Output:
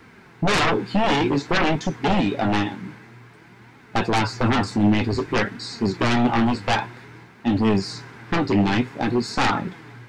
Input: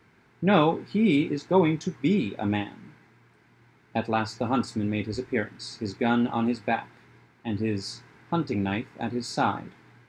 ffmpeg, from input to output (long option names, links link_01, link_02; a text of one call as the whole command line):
ffmpeg -i in.wav -filter_complex "[0:a]acrossover=split=3100[link_01][link_02];[link_02]acompressor=threshold=-46dB:ratio=4:attack=1:release=60[link_03];[link_01][link_03]amix=inputs=2:normalize=0,aeval=exprs='0.422*sin(PI/2*6.31*val(0)/0.422)':channel_layout=same,flanger=delay=3.5:depth=7.2:regen=54:speed=0.53:shape=triangular,volume=-4dB" out.wav